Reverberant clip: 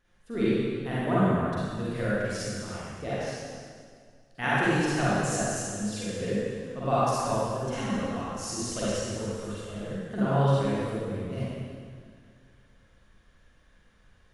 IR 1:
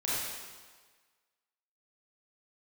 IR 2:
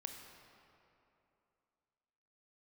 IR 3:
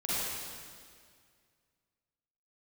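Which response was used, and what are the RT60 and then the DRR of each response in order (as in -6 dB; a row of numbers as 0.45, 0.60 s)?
3; 1.5, 2.8, 2.0 s; -8.5, 3.5, -10.5 dB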